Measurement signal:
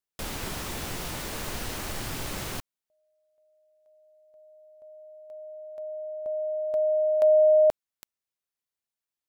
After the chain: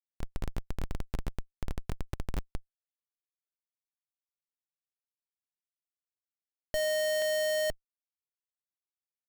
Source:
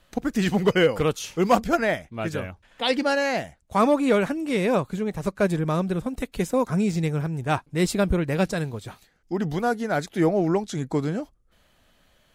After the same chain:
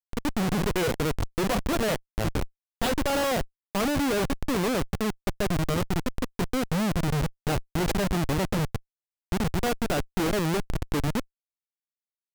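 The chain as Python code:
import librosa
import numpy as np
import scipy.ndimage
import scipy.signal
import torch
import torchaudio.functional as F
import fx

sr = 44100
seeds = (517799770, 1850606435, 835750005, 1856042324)

y = fx.schmitt(x, sr, flips_db=-24.0)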